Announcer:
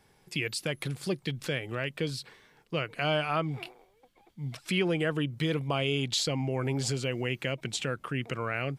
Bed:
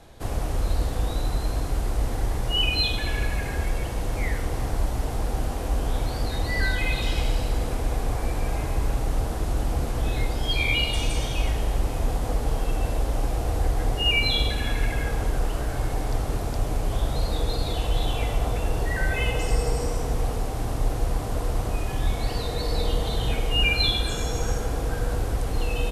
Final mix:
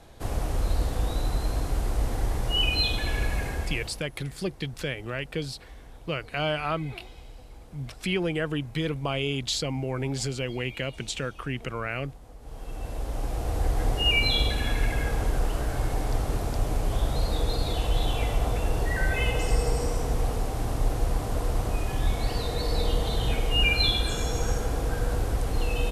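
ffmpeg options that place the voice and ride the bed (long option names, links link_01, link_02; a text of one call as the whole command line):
ffmpeg -i stem1.wav -i stem2.wav -filter_complex "[0:a]adelay=3350,volume=0.5dB[link_01];[1:a]volume=19.5dB,afade=type=out:start_time=3.42:duration=0.63:silence=0.0944061,afade=type=in:start_time=12.39:duration=1.46:silence=0.0891251[link_02];[link_01][link_02]amix=inputs=2:normalize=0" out.wav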